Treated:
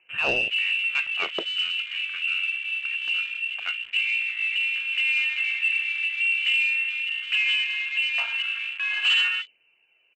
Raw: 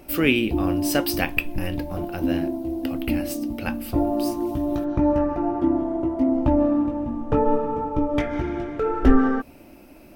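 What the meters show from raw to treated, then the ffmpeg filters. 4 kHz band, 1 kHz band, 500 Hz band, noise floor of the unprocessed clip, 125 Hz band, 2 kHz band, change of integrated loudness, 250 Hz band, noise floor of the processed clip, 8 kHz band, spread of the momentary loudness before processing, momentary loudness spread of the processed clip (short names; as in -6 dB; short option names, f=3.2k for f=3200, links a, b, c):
+12.5 dB, -13.5 dB, under -15 dB, -47 dBFS, under -25 dB, +10.5 dB, +0.5 dB, under -25 dB, -64 dBFS, under -10 dB, 9 LU, 7 LU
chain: -af "lowpass=f=2.6k:t=q:w=0.5098,lowpass=f=2.6k:t=q:w=0.6013,lowpass=f=2.6k:t=q:w=0.9,lowpass=f=2.6k:t=q:w=2.563,afreqshift=-3000,aphaser=in_gain=1:out_gain=1:delay=4.6:decay=0.31:speed=0.22:type=sinusoidal,aresample=16000,asoftclip=type=tanh:threshold=-16dB,aresample=44100,afwtdn=0.0251,volume=-1.5dB"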